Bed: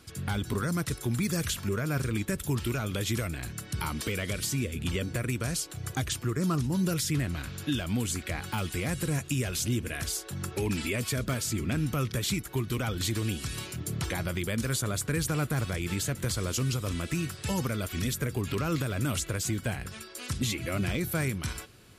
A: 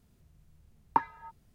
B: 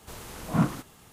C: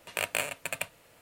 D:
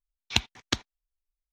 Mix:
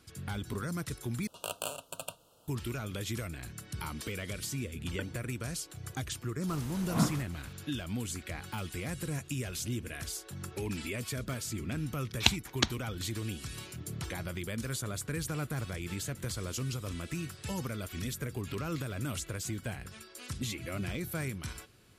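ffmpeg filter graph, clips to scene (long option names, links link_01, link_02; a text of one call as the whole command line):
ffmpeg -i bed.wav -i cue0.wav -i cue1.wav -i cue2.wav -i cue3.wav -filter_complex "[0:a]volume=-6.5dB[link_01];[3:a]asuperstop=centerf=2000:order=8:qfactor=1.5[link_02];[1:a]aeval=exprs='val(0)*sin(2*PI*1300*n/s+1300*0.7/2.7*sin(2*PI*2.7*n/s))':channel_layout=same[link_03];[link_01]asplit=2[link_04][link_05];[link_04]atrim=end=1.274[link_06];[link_02]atrim=end=1.21,asetpts=PTS-STARTPTS,volume=-4dB[link_07];[link_05]atrim=start=2.476[link_08];[link_03]atrim=end=1.54,asetpts=PTS-STARTPTS,volume=-13dB,afade=type=in:duration=0.004:curve=hsin,afade=type=out:start_time=1.536:duration=0.004:curve=hsin,adelay=4030[link_09];[2:a]atrim=end=1.12,asetpts=PTS-STARTPTS,volume=-4.5dB,afade=type=in:duration=0.004:curve=hsin,afade=type=out:start_time=1.116:duration=0.004:curve=hsin,adelay=6410[link_10];[4:a]atrim=end=1.52,asetpts=PTS-STARTPTS,volume=-0.5dB,afade=type=in:duration=0.004:curve=hsin,afade=type=out:start_time=1.516:duration=0.004:curve=hsin,adelay=11900[link_11];[link_06][link_07]acrossfade=duration=0.004:curve1=hsin:curve2=hsin[link_12];[link_12][link_08]acrossfade=duration=0.004:curve1=hsin:curve2=hsin[link_13];[link_13][link_09][link_10][link_11]amix=inputs=4:normalize=0" out.wav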